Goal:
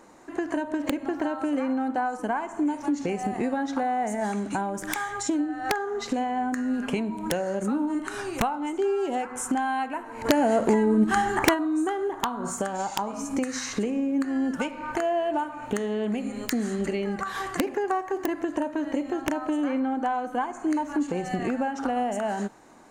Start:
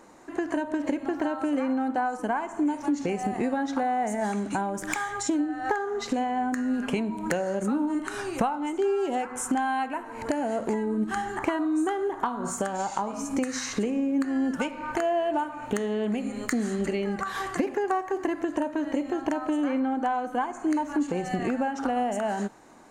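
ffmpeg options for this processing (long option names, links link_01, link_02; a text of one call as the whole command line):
ffmpeg -i in.wav -filter_complex "[0:a]aeval=exprs='(mod(5.01*val(0)+1,2)-1)/5.01':channel_layout=same,asplit=3[link_01][link_02][link_03];[link_01]afade=type=out:start_time=10.24:duration=0.02[link_04];[link_02]acontrast=72,afade=type=in:start_time=10.24:duration=0.02,afade=type=out:start_time=11.53:duration=0.02[link_05];[link_03]afade=type=in:start_time=11.53:duration=0.02[link_06];[link_04][link_05][link_06]amix=inputs=3:normalize=0" out.wav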